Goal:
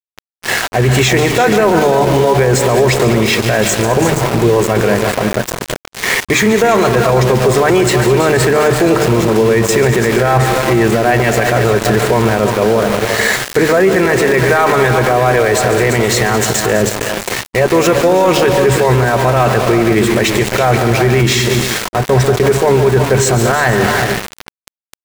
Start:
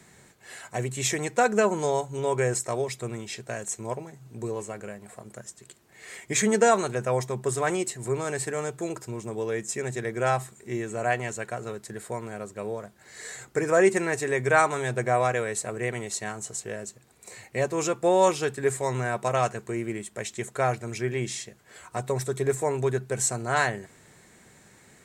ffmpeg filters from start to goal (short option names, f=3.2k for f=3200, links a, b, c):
-filter_complex "[0:a]lowpass=3.7k,bandreject=f=50:t=h:w=6,bandreject=f=100:t=h:w=6,bandreject=f=150:t=h:w=6,bandreject=f=200:t=h:w=6,bandreject=f=250:t=h:w=6,bandreject=f=300:t=h:w=6,areverse,acompressor=threshold=-35dB:ratio=4,areverse,asoftclip=type=tanh:threshold=-25.5dB,asplit=2[a][b];[b]aecho=0:1:141|206|331|356|473:0.224|0.188|0.266|0.237|0.168[c];[a][c]amix=inputs=2:normalize=0,aeval=exprs='val(0)*gte(abs(val(0)),0.00562)':c=same,asplit=2[d][e];[e]asetrate=22050,aresample=44100,atempo=2,volume=-17dB[f];[d][f]amix=inputs=2:normalize=0,alimiter=level_in=34dB:limit=-1dB:release=50:level=0:latency=1,volume=-2dB"